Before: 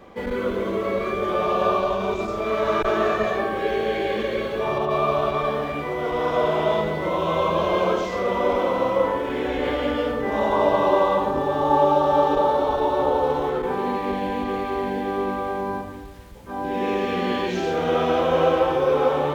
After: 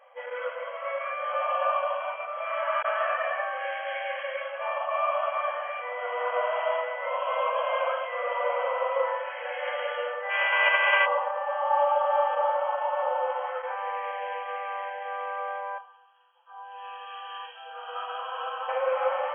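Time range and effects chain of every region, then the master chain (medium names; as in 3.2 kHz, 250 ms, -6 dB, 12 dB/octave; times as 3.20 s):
10.29–11.05 s: formants flattened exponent 0.3 + peaking EQ 2.4 kHz +6 dB 0.26 oct
15.78–18.69 s: tilt shelf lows -8.5 dB, about 1.5 kHz + static phaser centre 570 Hz, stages 6
whole clip: FFT band-pass 480–3300 Hz; dynamic bell 1.7 kHz, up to +6 dB, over -37 dBFS, Q 0.86; trim -7 dB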